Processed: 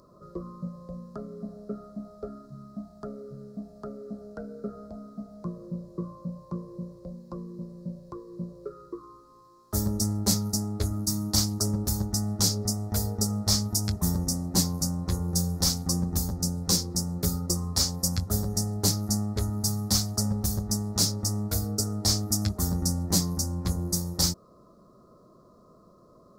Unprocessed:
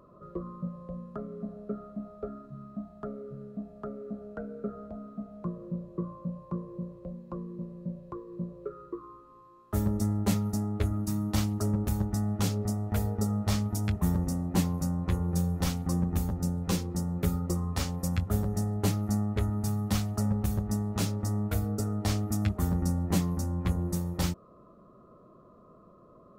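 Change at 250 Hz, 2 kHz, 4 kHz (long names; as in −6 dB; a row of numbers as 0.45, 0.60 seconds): 0.0, −3.5, +13.0 decibels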